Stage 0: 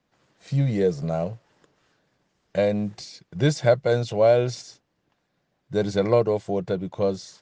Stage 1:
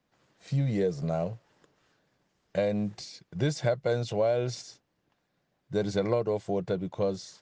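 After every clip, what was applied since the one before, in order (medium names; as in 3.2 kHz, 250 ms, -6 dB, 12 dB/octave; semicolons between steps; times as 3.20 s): compression 4:1, threshold -20 dBFS, peak gain reduction 7.5 dB; trim -3 dB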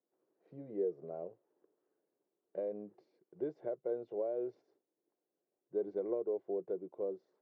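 ladder band-pass 420 Hz, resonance 60%; trim -1 dB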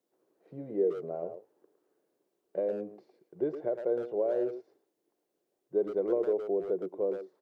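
speakerphone echo 110 ms, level -8 dB; trim +7 dB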